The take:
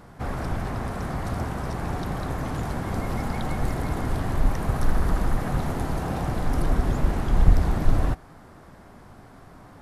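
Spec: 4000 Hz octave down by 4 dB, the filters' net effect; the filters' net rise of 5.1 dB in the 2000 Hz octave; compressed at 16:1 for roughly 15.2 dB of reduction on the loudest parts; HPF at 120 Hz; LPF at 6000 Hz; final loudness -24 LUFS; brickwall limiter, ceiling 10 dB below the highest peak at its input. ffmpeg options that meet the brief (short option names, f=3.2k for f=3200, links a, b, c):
-af "highpass=120,lowpass=6k,equalizer=f=2k:t=o:g=8,equalizer=f=4k:t=o:g=-7.5,acompressor=threshold=-34dB:ratio=16,volume=20dB,alimiter=limit=-15dB:level=0:latency=1"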